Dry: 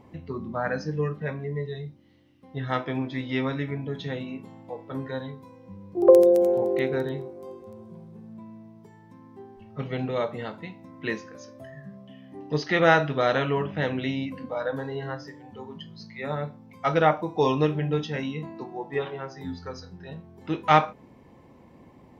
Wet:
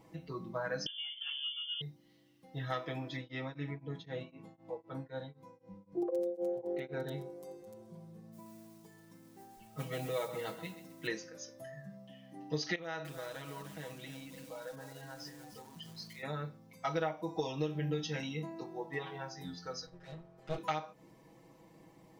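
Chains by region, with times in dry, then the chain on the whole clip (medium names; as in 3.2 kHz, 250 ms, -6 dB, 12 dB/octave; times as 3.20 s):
0.86–1.81 s: tilt shelf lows +7.5 dB, about 720 Hz + frequency inversion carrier 3.3 kHz
3.16–7.07 s: low-pass 2.2 kHz 6 dB/octave + tremolo of two beating tones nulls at 3.9 Hz
8.32–11.07 s: hum notches 60/120 Hz + modulation noise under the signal 28 dB + bit-crushed delay 131 ms, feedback 35%, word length 9-bit, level -12 dB
12.75–16.23 s: compression 3:1, threshold -40 dBFS + bit-crushed delay 299 ms, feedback 35%, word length 8-bit, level -9 dB
19.86–20.58 s: comb filter that takes the minimum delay 7.8 ms + low-pass 2.2 kHz 6 dB/octave + peaking EQ 290 Hz -14 dB 0.24 oct
whole clip: tone controls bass -3 dB, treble +11 dB; compression 12:1, threshold -26 dBFS; comb 6.2 ms, depth 91%; trim -8.5 dB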